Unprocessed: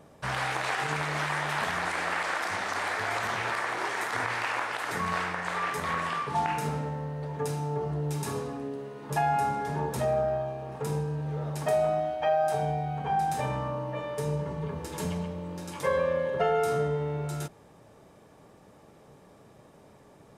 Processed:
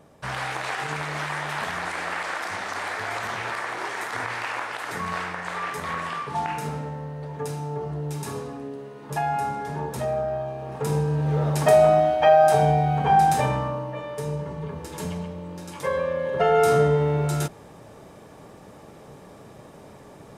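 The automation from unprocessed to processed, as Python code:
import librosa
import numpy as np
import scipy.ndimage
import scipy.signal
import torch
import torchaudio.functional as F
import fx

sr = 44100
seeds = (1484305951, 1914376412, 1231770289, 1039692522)

y = fx.gain(x, sr, db=fx.line((10.27, 0.5), (11.34, 10.0), (13.26, 10.0), (13.96, 1.0), (16.17, 1.0), (16.67, 9.0)))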